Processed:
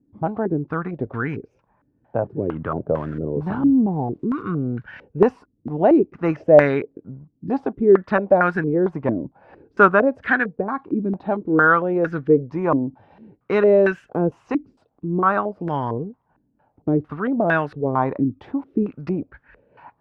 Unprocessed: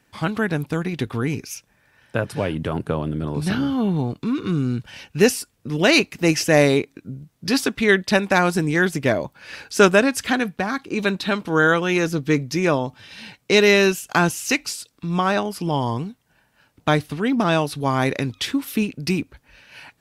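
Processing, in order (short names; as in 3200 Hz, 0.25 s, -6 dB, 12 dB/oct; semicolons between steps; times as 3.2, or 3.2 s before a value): 2.93–4.42 switching spikes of -25 dBFS; stepped low-pass 4.4 Hz 290–1600 Hz; gain -3.5 dB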